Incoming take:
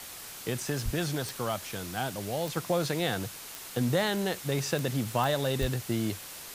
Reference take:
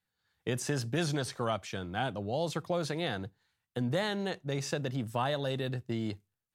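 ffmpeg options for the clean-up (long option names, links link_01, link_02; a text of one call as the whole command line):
ffmpeg -i in.wav -filter_complex "[0:a]adeclick=threshold=4,asplit=3[link_01][link_02][link_03];[link_01]afade=type=out:start_time=0.84:duration=0.02[link_04];[link_02]highpass=frequency=140:width=0.5412,highpass=frequency=140:width=1.3066,afade=type=in:start_time=0.84:duration=0.02,afade=type=out:start_time=0.96:duration=0.02[link_05];[link_03]afade=type=in:start_time=0.96:duration=0.02[link_06];[link_04][link_05][link_06]amix=inputs=3:normalize=0,asplit=3[link_07][link_08][link_09];[link_07]afade=type=out:start_time=5.6:duration=0.02[link_10];[link_08]highpass=frequency=140:width=0.5412,highpass=frequency=140:width=1.3066,afade=type=in:start_time=5.6:duration=0.02,afade=type=out:start_time=5.72:duration=0.02[link_11];[link_09]afade=type=in:start_time=5.72:duration=0.02[link_12];[link_10][link_11][link_12]amix=inputs=3:normalize=0,afwtdn=0.0079,asetnsamples=nb_out_samples=441:pad=0,asendcmd='2.57 volume volume -4dB',volume=0dB" out.wav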